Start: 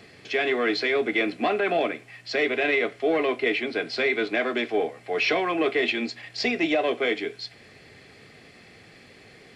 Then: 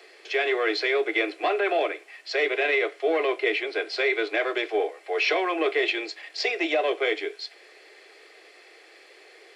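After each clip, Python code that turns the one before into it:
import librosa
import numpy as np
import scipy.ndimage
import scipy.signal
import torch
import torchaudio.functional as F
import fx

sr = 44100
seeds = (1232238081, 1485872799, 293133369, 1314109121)

y = scipy.signal.sosfilt(scipy.signal.butter(12, 330.0, 'highpass', fs=sr, output='sos'), x)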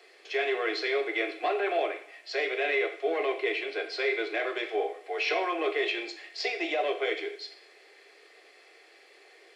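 y = fx.rev_double_slope(x, sr, seeds[0], early_s=0.56, late_s=1.9, knee_db=-25, drr_db=4.5)
y = y * librosa.db_to_amplitude(-6.0)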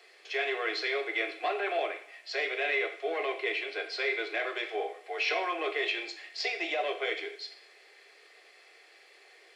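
y = fx.highpass(x, sr, hz=620.0, slope=6)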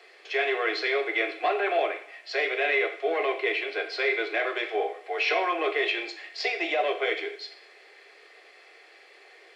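y = fx.high_shelf(x, sr, hz=4600.0, db=-9.5)
y = y * librosa.db_to_amplitude(6.0)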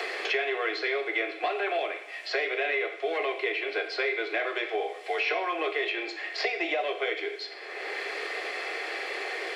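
y = fx.band_squash(x, sr, depth_pct=100)
y = y * librosa.db_to_amplitude(-3.0)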